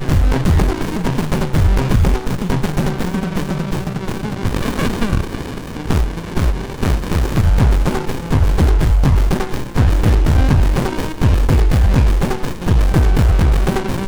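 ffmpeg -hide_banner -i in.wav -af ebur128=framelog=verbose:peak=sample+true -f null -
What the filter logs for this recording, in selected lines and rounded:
Integrated loudness:
  I:         -17.1 LUFS
  Threshold: -27.2 LUFS
Loudness range:
  LRA:         5.4 LU
  Threshold: -37.4 LUFS
  LRA low:   -21.0 LUFS
  LRA high:  -15.6 LUFS
Sample peak:
  Peak:       -1.4 dBFS
True peak:
  Peak:       -1.4 dBFS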